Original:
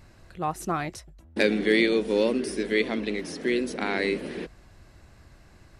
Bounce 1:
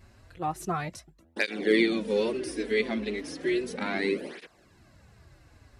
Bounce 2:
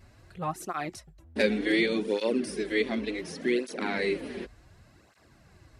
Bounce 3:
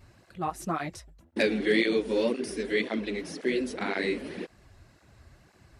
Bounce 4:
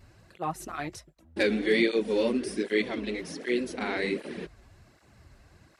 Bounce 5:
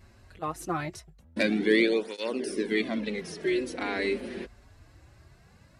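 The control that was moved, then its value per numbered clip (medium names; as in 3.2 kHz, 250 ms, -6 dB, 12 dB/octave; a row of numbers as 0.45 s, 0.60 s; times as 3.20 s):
cancelling through-zero flanger, nulls at: 0.34 Hz, 0.68 Hz, 1.9 Hz, 1.3 Hz, 0.23 Hz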